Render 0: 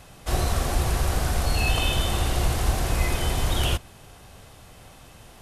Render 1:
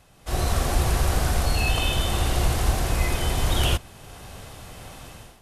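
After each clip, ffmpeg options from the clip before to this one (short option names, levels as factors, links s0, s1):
-af "dynaudnorm=f=130:g=5:m=5.62,volume=0.376"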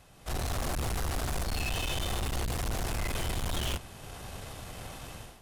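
-af "aeval=exprs='(tanh(31.6*val(0)+0.4)-tanh(0.4))/31.6':c=same"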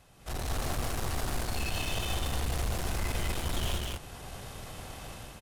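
-af "aecho=1:1:84.55|201.2:0.282|0.794,volume=0.75"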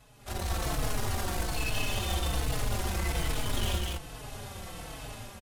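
-filter_complex "[0:a]asplit=2[s0][s1];[s1]adelay=4.2,afreqshift=-1.2[s2];[s0][s2]amix=inputs=2:normalize=1,volume=1.68"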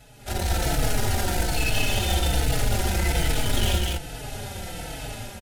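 -af "asuperstop=centerf=1100:order=4:qfactor=4.1,volume=2.37"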